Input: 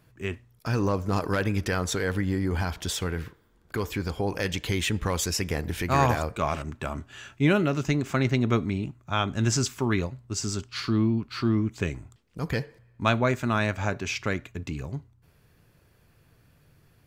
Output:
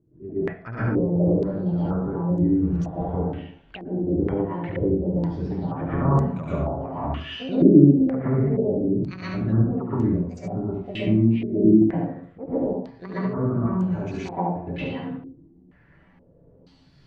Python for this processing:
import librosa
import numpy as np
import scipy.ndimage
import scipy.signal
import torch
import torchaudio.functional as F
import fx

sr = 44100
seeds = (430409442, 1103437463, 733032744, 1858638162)

p1 = fx.pitch_trill(x, sr, semitones=10.0, every_ms=288)
p2 = fx.env_lowpass_down(p1, sr, base_hz=410.0, full_db=-23.5)
p3 = p2 * (1.0 - 0.35 / 2.0 + 0.35 / 2.0 * np.cos(2.0 * np.pi * 1.7 * (np.arange(len(p2)) / sr)))
p4 = p3 + fx.echo_single(p3, sr, ms=70, db=-4.5, dry=0)
p5 = fx.rev_plate(p4, sr, seeds[0], rt60_s=0.54, hf_ratio=0.6, predelay_ms=105, drr_db=-9.5)
p6 = fx.filter_held_lowpass(p5, sr, hz=2.1, low_hz=340.0, high_hz=6900.0)
y = p6 * librosa.db_to_amplitude(-7.0)